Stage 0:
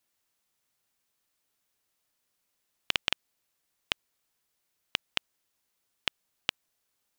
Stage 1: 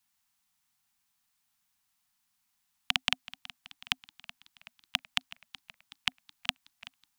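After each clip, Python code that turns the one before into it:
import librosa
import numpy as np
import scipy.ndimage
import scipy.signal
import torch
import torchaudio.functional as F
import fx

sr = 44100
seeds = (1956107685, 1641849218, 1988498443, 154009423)

y = scipy.signal.sosfilt(scipy.signal.cheby1(5, 1.0, [260.0, 730.0], 'bandstop', fs=sr, output='sos'), x)
y = fx.echo_warbled(y, sr, ms=375, feedback_pct=60, rate_hz=2.8, cents=108, wet_db=-18)
y = F.gain(torch.from_numpy(y), 1.5).numpy()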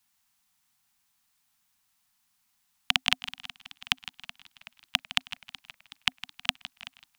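y = fx.echo_feedback(x, sr, ms=159, feedback_pct=34, wet_db=-15.0)
y = F.gain(torch.from_numpy(y), 4.0).numpy()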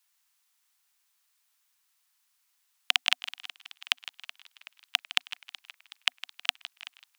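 y = scipy.signal.sosfilt(scipy.signal.butter(2, 990.0, 'highpass', fs=sr, output='sos'), x)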